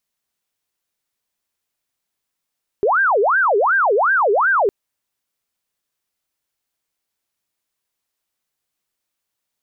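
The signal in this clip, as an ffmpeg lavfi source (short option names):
-f lavfi -i "aevalsrc='0.237*sin(2*PI*(997.5*t-602.5/(2*PI*2.7)*sin(2*PI*2.7*t)))':d=1.86:s=44100"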